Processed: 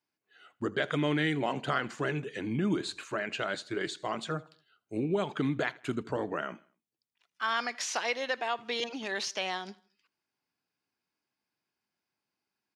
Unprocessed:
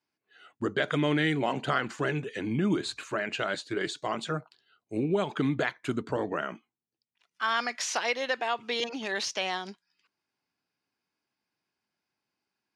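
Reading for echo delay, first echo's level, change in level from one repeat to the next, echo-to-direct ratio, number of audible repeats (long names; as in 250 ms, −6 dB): 80 ms, −23.0 dB, −7.5 dB, −22.0 dB, 2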